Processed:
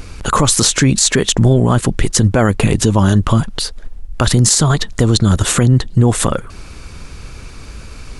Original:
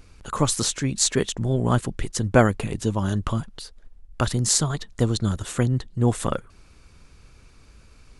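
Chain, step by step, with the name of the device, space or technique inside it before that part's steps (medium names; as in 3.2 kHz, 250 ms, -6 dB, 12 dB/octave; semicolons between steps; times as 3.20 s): loud club master (compression 2:1, threshold -26 dBFS, peak gain reduction 9 dB; hard clipper -10 dBFS, distortion -50 dB; loudness maximiser +19.5 dB); trim -1 dB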